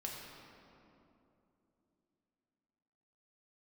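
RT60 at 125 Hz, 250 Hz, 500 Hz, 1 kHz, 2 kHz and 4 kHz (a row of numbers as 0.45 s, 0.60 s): 3.6 s, 4.0 s, 3.3 s, 2.6 s, 2.0 s, 1.6 s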